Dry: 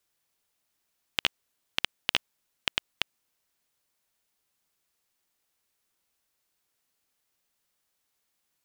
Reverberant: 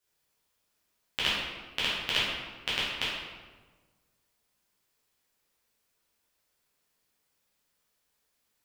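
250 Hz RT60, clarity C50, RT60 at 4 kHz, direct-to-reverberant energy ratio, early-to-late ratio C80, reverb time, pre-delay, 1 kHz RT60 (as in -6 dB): 1.6 s, -1.0 dB, 0.90 s, -9.0 dB, 2.0 dB, 1.4 s, 7 ms, 1.3 s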